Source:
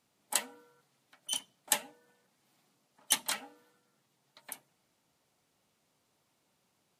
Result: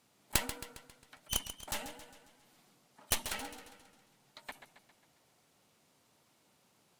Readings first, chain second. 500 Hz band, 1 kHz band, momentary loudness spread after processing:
+1.5 dB, -2.0 dB, 21 LU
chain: Chebyshev shaper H 3 -18 dB, 4 -7 dB, 5 -44 dB, 8 -23 dB, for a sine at -7 dBFS; slow attack 118 ms; modulated delay 135 ms, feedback 52%, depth 88 cents, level -11 dB; trim +8.5 dB

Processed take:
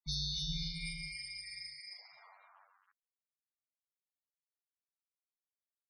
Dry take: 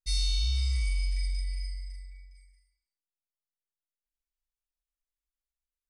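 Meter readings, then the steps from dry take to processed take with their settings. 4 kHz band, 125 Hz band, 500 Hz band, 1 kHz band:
-3.0 dB, -12.5 dB, no reading, +3.5 dB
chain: band-stop 1.3 kHz, Q 5.9; level-controlled noise filter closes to 680 Hz, open at -28 dBFS; hum notches 50/100/150/200/250/300/350 Hz; reverse; compression 6:1, threshold -39 dBFS, peak gain reduction 14.5 dB; reverse; bit crusher 11-bit; high-pass sweep 74 Hz -> 1.8 kHz, 0.09–2.87 s; ring modulator 100 Hz; loudest bins only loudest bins 32; delay 271 ms -4 dB; trim +11.5 dB

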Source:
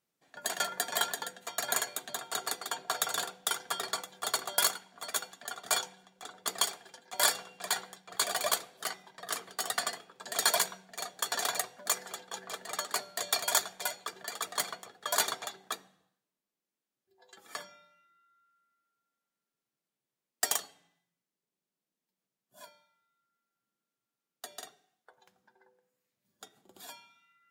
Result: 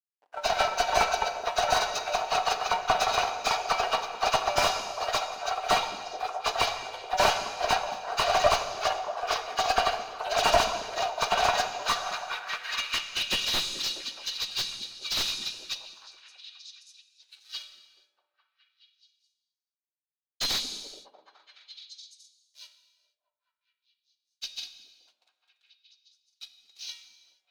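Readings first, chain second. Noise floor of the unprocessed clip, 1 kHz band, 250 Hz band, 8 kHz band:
under -85 dBFS, +11.0 dB, +7.5 dB, -3.5 dB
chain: knee-point frequency compression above 1.2 kHz 1.5:1; peaking EQ 440 Hz +6.5 dB 1.2 oct; in parallel at -3 dB: compression, threshold -38 dBFS, peak gain reduction 15.5 dB; on the sum: hysteresis with a dead band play -47.5 dBFS; high-pass sweep 730 Hz -> 3.9 kHz, 11.45–13.64 s; valve stage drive 14 dB, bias 0.6; on a send: repeats whose band climbs or falls 212 ms, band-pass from 260 Hz, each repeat 0.7 oct, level -6 dB; on the sum: gated-style reverb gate 500 ms falling, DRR 9 dB; slew-rate limiter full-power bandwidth 110 Hz; trim +5.5 dB

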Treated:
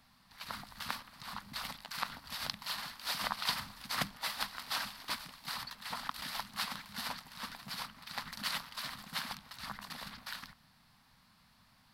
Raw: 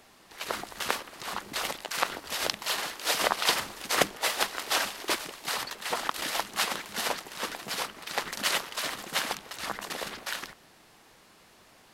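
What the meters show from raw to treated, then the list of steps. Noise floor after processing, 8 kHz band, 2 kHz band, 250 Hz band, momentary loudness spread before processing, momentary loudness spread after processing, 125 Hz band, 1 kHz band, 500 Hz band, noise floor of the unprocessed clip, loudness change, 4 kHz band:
-66 dBFS, -13.0 dB, -9.5 dB, -8.0 dB, 9 LU, 9 LU, -2.0 dB, -9.0 dB, -18.5 dB, -58 dBFS, -9.0 dB, -8.0 dB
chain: FFT filter 150 Hz 0 dB, 250 Hz -4 dB, 360 Hz -26 dB, 990 Hz -6 dB, 1.8 kHz -8 dB, 2.9 kHz -10 dB, 4.5 kHz -3 dB, 6.7 kHz -15 dB, 9.7 kHz -10 dB, 15 kHz -6 dB; trim -1.5 dB

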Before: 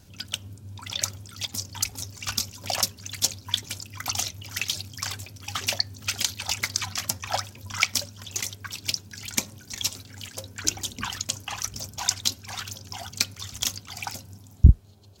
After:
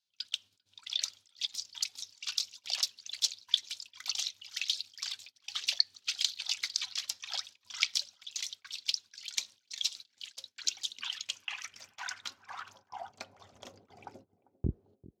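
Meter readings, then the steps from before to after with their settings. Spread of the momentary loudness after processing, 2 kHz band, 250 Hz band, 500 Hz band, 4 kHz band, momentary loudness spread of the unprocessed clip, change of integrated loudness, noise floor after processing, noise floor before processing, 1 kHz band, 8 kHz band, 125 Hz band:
16 LU, -9.0 dB, under -10 dB, under -10 dB, -3.5 dB, 11 LU, -6.5 dB, -77 dBFS, -50 dBFS, -13.0 dB, -10.5 dB, under -15 dB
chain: gate -40 dBFS, range -20 dB; band-pass sweep 3.9 kHz -> 400 Hz, 10.87–14.02 s; on a send: band-passed feedback delay 395 ms, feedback 57%, band-pass 320 Hz, level -18 dB

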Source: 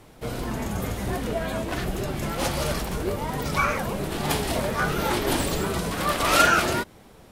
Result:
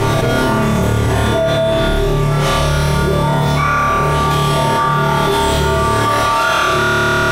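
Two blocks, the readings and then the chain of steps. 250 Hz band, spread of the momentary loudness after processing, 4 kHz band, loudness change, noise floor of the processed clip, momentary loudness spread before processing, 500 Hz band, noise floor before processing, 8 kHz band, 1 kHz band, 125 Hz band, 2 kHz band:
+11.0 dB, 2 LU, +10.0 dB, +11.0 dB, -15 dBFS, 10 LU, +12.0 dB, -50 dBFS, +5.5 dB, +12.5 dB, +15.5 dB, +9.0 dB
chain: low-pass 3.9 kHz 6 dB/octave; feedback comb 130 Hz, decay 0.35 s, harmonics odd, mix 90%; flutter echo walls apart 4.7 m, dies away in 1.5 s; level flattener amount 100%; trim +9 dB

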